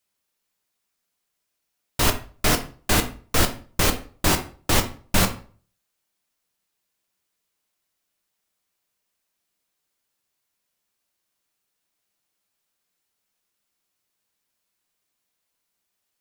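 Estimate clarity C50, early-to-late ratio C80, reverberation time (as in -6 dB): 12.5 dB, 17.5 dB, 0.40 s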